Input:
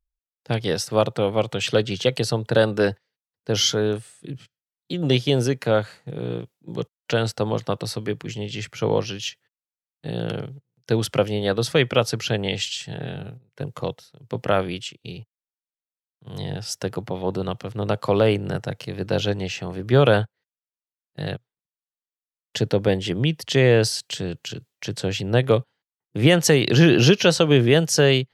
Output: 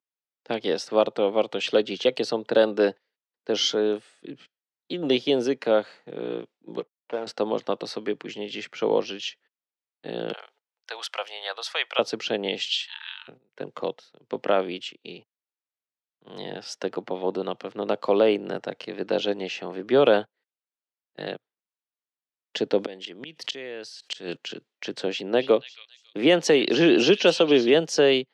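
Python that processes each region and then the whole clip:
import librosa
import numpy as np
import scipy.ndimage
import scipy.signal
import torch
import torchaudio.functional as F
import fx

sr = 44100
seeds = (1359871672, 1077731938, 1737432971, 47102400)

y = fx.chain(x, sr, fx.median_filter(points=25),
    fx.lowpass(hz=1400.0, slope=6),
    fx.low_shelf(hz=430.0, db=-11.5), at=(6.8, 7.27))
y = fx.chain(y, sr, fx.highpass(hz=790.0, slope=24),
    fx.high_shelf(hz=11000.0, db=9.0), at=(10.33, 11.99))
y = fx.chain(y, sr, fx.cheby1_highpass(hz=890.0, order=10),
    fx.peak_eq(hz=3300.0, db=9.5, octaves=1.1), at=(12.69, 13.28))
y = fx.chain(y, sr, fx.high_shelf(hz=2100.0, db=8.5),
    fx.gate_flip(shuts_db=-13.0, range_db=-29),
    fx.env_flatten(amount_pct=50), at=(22.78, 24.37))
y = fx.chain(y, sr, fx.highpass(hz=130.0, slope=12),
    fx.echo_stepped(ms=277, hz=3300.0, octaves=0.7, feedback_pct=70, wet_db=-8.0), at=(25.06, 27.74))
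y = scipy.signal.sosfilt(scipy.signal.butter(2, 4100.0, 'lowpass', fs=sr, output='sos'), y)
y = fx.dynamic_eq(y, sr, hz=1600.0, q=1.2, threshold_db=-37.0, ratio=4.0, max_db=-5)
y = scipy.signal.sosfilt(scipy.signal.butter(4, 240.0, 'highpass', fs=sr, output='sos'), y)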